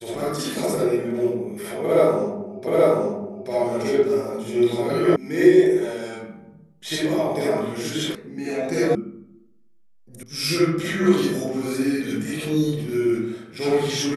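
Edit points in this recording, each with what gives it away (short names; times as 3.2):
2.67 repeat of the last 0.83 s
5.16 sound cut off
8.15 sound cut off
8.95 sound cut off
10.23 sound cut off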